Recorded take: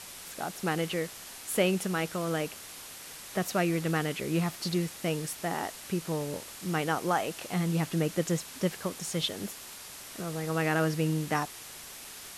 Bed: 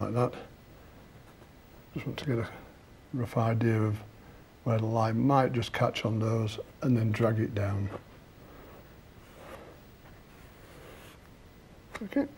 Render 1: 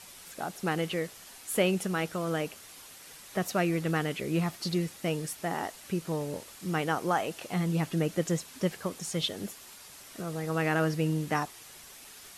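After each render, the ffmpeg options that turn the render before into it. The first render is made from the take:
ffmpeg -i in.wav -af "afftdn=noise_reduction=6:noise_floor=-46" out.wav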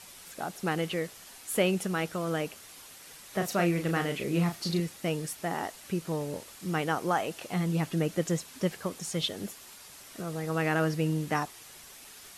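ffmpeg -i in.wav -filter_complex "[0:a]asettb=1/sr,asplit=3[link_01][link_02][link_03];[link_01]atrim=end=3.304[link_04];[link_02]atrim=start=3.3:end=4.8,asetpts=PTS-STARTPTS,afade=type=in:duration=0.004:curve=qsin,afade=type=out:start_time=1.496:duration=0.004:curve=qsin,asplit=2[link_05][link_06];[link_06]adelay=35,volume=-6.5dB[link_07];[link_05][link_07]amix=inputs=2:normalize=0,atrim=end_sample=66150[link_08];[link_03]atrim=start=4.796[link_09];[link_04][link_08]acrossfade=duration=0.004:curve1=hsin:curve2=qsin[link_10];[link_10][link_09]acrossfade=duration=0.004:curve1=qsin:curve2=hsin" out.wav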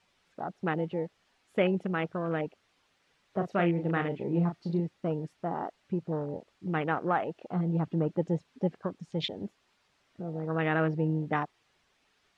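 ffmpeg -i in.wav -af "afwtdn=0.0178,lowpass=3600" out.wav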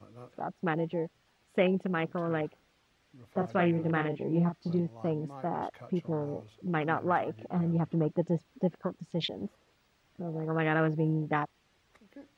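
ffmpeg -i in.wav -i bed.wav -filter_complex "[1:a]volume=-21.5dB[link_01];[0:a][link_01]amix=inputs=2:normalize=0" out.wav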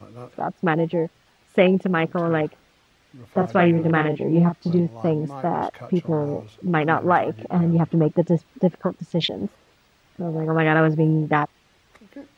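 ffmpeg -i in.wav -af "volume=10dB" out.wav

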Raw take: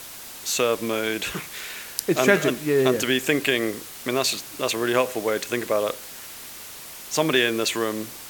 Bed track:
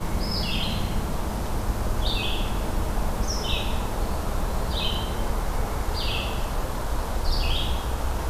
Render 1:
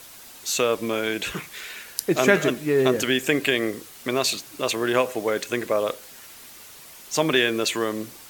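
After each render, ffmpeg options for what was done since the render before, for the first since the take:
ffmpeg -i in.wav -af "afftdn=noise_reduction=6:noise_floor=-40" out.wav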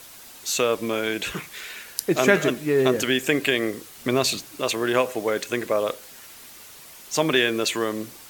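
ffmpeg -i in.wav -filter_complex "[0:a]asettb=1/sr,asplit=3[link_01][link_02][link_03];[link_01]atrim=end=3.984[link_04];[link_02]atrim=start=3.98:end=4.46,asetpts=PTS-STARTPTS,afade=type=in:duration=0.004:curve=qsin,afade=type=out:start_time=0.476:duration=0.004:curve=qsin,lowshelf=frequency=250:gain=9[link_05];[link_03]atrim=start=4.456[link_06];[link_04][link_05]acrossfade=duration=0.004:curve1=hsin:curve2=qsin[link_07];[link_07][link_06]acrossfade=duration=0.004:curve1=qsin:curve2=hsin" out.wav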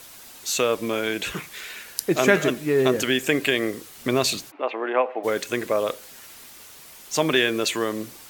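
ffmpeg -i in.wav -filter_complex "[0:a]asplit=3[link_01][link_02][link_03];[link_01]afade=type=out:start_time=4.5:duration=0.02[link_04];[link_02]highpass=frequency=300:width=0.5412,highpass=frequency=300:width=1.3066,equalizer=frequency=380:width_type=q:width=4:gain=-5,equalizer=frequency=800:width_type=q:width=4:gain=7,equalizer=frequency=1600:width_type=q:width=4:gain=-4,lowpass=frequency=2300:width=0.5412,lowpass=frequency=2300:width=1.3066,afade=type=in:start_time=4.5:duration=0.02,afade=type=out:start_time=5.23:duration=0.02[link_05];[link_03]afade=type=in:start_time=5.23:duration=0.02[link_06];[link_04][link_05][link_06]amix=inputs=3:normalize=0,asettb=1/sr,asplit=3[link_07][link_08][link_09];[link_07]atrim=end=6.444[link_10];[link_08]atrim=start=6.44:end=7.14,asetpts=PTS-STARTPTS,afade=type=in:duration=0.004:curve=qsin,afade=type=out:start_time=0.696:duration=0.004:curve=qsin,aeval=exprs='val(0)*gte(abs(val(0)),0.00473)':channel_layout=same[link_11];[link_09]atrim=start=7.136[link_12];[link_10][link_11]acrossfade=duration=0.004:curve1=hsin:curve2=qsin[link_13];[link_13][link_12]acrossfade=duration=0.004:curve1=qsin:curve2=hsin" out.wav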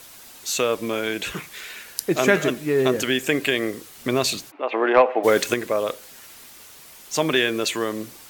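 ffmpeg -i in.wav -filter_complex "[0:a]asettb=1/sr,asplit=3[link_01][link_02][link_03];[link_01]atrim=end=4.724[link_04];[link_02]atrim=start=4.72:end=5.54,asetpts=PTS-STARTPTS,afade=type=in:duration=0.004:curve=qsin,afade=type=out:start_time=0.816:duration=0.004:curve=qsin,acontrast=88[link_05];[link_03]atrim=start=5.536[link_06];[link_04][link_05]acrossfade=duration=0.004:curve1=hsin:curve2=qsin[link_07];[link_07][link_06]acrossfade=duration=0.004:curve1=qsin:curve2=hsin" out.wav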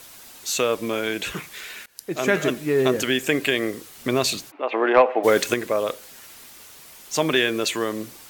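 ffmpeg -i in.wav -filter_complex "[0:a]asplit=2[link_01][link_02];[link_01]atrim=end=1.86,asetpts=PTS-STARTPTS,afade=type=out:start_time=1.856:duration=0.004:curve=hsin:silence=0.0668344[link_03];[link_02]atrim=start=1.86,asetpts=PTS-STARTPTS,afade=type=in:duration=0.64:silence=0.0668344[link_04];[link_03][link_04]concat=n=2:v=0:a=1" out.wav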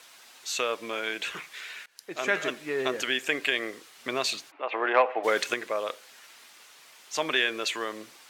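ffmpeg -i in.wav -af "highpass=frequency=1300:poles=1,aemphasis=mode=reproduction:type=50fm" out.wav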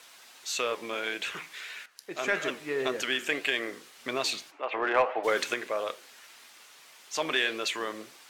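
ffmpeg -i in.wav -filter_complex "[0:a]asplit=2[link_01][link_02];[link_02]asoftclip=type=tanh:threshold=-22.5dB,volume=-5dB[link_03];[link_01][link_03]amix=inputs=2:normalize=0,flanger=delay=6.9:depth=8.3:regen=-81:speed=1.7:shape=sinusoidal" out.wav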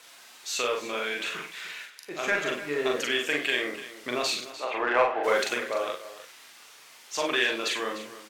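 ffmpeg -i in.wav -filter_complex "[0:a]asplit=2[link_01][link_02];[link_02]adelay=41,volume=-3dB[link_03];[link_01][link_03]amix=inputs=2:normalize=0,asplit=2[link_04][link_05];[link_05]aecho=0:1:54|299:0.299|0.188[link_06];[link_04][link_06]amix=inputs=2:normalize=0" out.wav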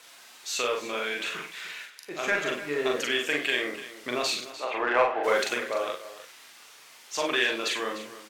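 ffmpeg -i in.wav -af anull out.wav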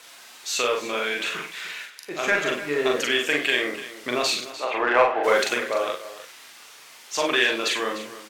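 ffmpeg -i in.wav -af "volume=4.5dB" out.wav

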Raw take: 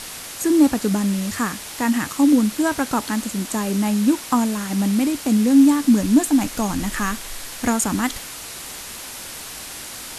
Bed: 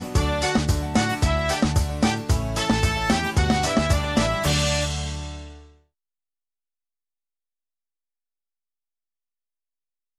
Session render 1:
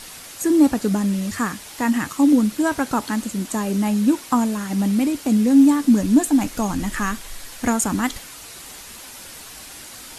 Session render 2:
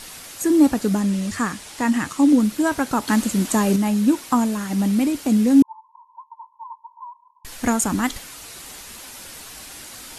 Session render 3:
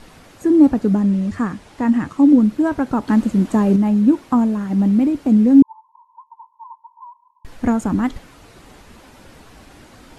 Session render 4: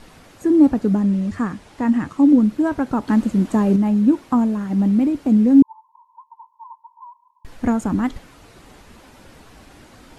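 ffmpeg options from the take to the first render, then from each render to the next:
ffmpeg -i in.wav -af "afftdn=noise_reduction=6:noise_floor=-35" out.wav
ffmpeg -i in.wav -filter_complex "[0:a]asettb=1/sr,asplit=3[link_01][link_02][link_03];[link_01]atrim=end=1.014[link_04];[link_02]atrim=start=1.01:end=2.4,asetpts=PTS-STARTPTS,afade=type=in:duration=0.004:curve=qsin,afade=type=out:start_time=1.386:duration=0.004:curve=qsin,lowpass=frequency=11000:width=0.5412,lowpass=frequency=11000:width=1.3066[link_05];[link_03]atrim=start=2.396[link_06];[link_04][link_05]acrossfade=duration=0.004:curve1=hsin:curve2=qsin[link_07];[link_07][link_06]acrossfade=duration=0.004:curve1=qsin:curve2=hsin,asettb=1/sr,asplit=3[link_08][link_09][link_10];[link_08]atrim=end=5.624[link_11];[link_09]atrim=start=5.62:end=7.45,asetpts=PTS-STARTPTS,afade=type=in:duration=0.004:curve=qsin,afade=type=out:start_time=1.826:duration=0.004:curve=qsin,asuperpass=centerf=970:order=12:qfactor=5.8[link_12];[link_10]atrim=start=7.446[link_13];[link_11][link_12]acrossfade=duration=0.004:curve1=hsin:curve2=qsin[link_14];[link_14][link_13]acrossfade=duration=0.004:curve1=qsin:curve2=hsin,asplit=3[link_15][link_16][link_17];[link_15]atrim=end=3.082[link_18];[link_16]atrim=start=3.078:end=3.762,asetpts=PTS-STARTPTS,volume=5dB[link_19];[link_17]atrim=start=3.758[link_20];[link_18][link_19]acrossfade=duration=0.004:curve1=hsin:curve2=hsin[link_21];[link_21][link_20]acrossfade=duration=0.004:curve1=hsin:curve2=hsin" out.wav
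ffmpeg -i in.wav -af "lowpass=frequency=1100:poles=1,lowshelf=frequency=460:gain=5.5" out.wav
ffmpeg -i in.wav -af "volume=-1.5dB" out.wav

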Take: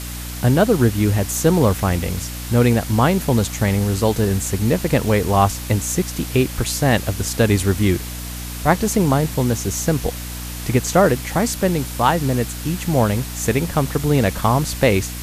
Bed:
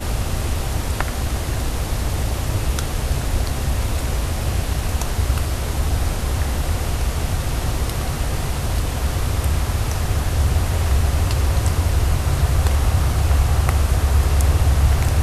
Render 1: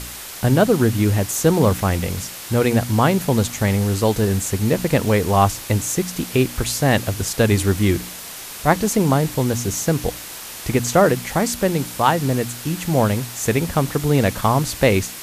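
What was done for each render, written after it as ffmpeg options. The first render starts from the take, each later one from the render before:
ffmpeg -i in.wav -af "bandreject=frequency=60:width_type=h:width=4,bandreject=frequency=120:width_type=h:width=4,bandreject=frequency=180:width_type=h:width=4,bandreject=frequency=240:width_type=h:width=4,bandreject=frequency=300:width_type=h:width=4" out.wav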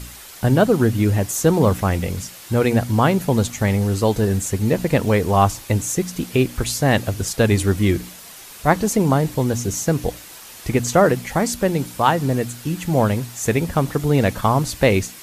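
ffmpeg -i in.wav -af "afftdn=noise_reduction=7:noise_floor=-34" out.wav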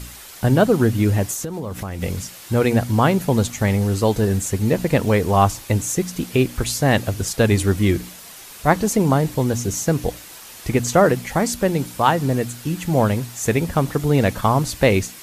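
ffmpeg -i in.wav -filter_complex "[0:a]asettb=1/sr,asplit=3[link_01][link_02][link_03];[link_01]atrim=end=1.334[link_04];[link_02]atrim=start=1.33:end=2.02,asetpts=PTS-STARTPTS,afade=type=in:duration=0.004:curve=qsin,afade=type=out:start_time=0.686:duration=0.004:curve=qsin,acompressor=threshold=-23dB:ratio=20:attack=3.2:release=140:knee=1:detection=peak[link_05];[link_03]atrim=start=2.016[link_06];[link_04][link_05]acrossfade=duration=0.004:curve1=hsin:curve2=qsin[link_07];[link_07][link_06]acrossfade=duration=0.004:curve1=qsin:curve2=hsin" out.wav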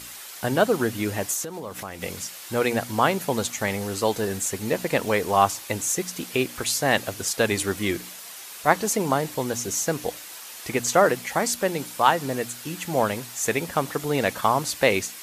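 ffmpeg -i in.wav -af "highpass=frequency=620:poles=1" out.wav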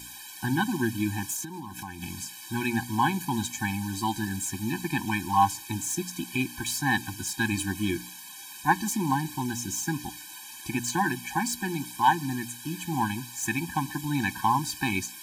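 ffmpeg -i in.wav -filter_complex "[0:a]acrossover=split=2300[link_01][link_02];[link_02]asoftclip=type=tanh:threshold=-21.5dB[link_03];[link_01][link_03]amix=inputs=2:normalize=0,afftfilt=real='re*eq(mod(floor(b*sr/1024/370),2),0)':imag='im*eq(mod(floor(b*sr/1024/370),2),0)':win_size=1024:overlap=0.75" out.wav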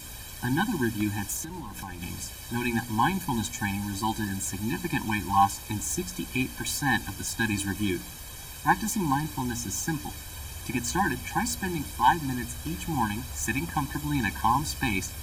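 ffmpeg -i in.wav -i bed.wav -filter_complex "[1:a]volume=-23.5dB[link_01];[0:a][link_01]amix=inputs=2:normalize=0" out.wav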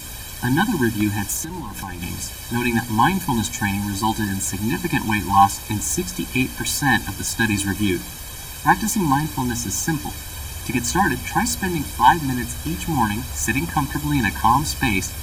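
ffmpeg -i in.wav -af "volume=7.5dB,alimiter=limit=-1dB:level=0:latency=1" out.wav

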